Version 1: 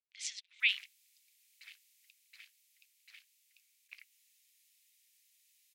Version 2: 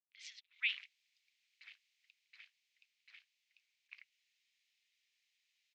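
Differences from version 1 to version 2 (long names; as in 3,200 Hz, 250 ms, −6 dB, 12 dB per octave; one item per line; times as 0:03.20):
speech −3.5 dB
master: add high-frequency loss of the air 190 metres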